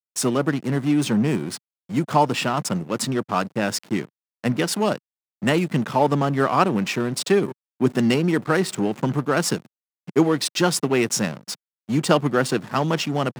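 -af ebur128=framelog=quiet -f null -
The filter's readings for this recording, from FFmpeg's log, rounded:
Integrated loudness:
  I:         -22.3 LUFS
  Threshold: -32.5 LUFS
Loudness range:
  LRA:         3.1 LU
  Threshold: -42.6 LUFS
  LRA low:   -24.3 LUFS
  LRA high:  -21.3 LUFS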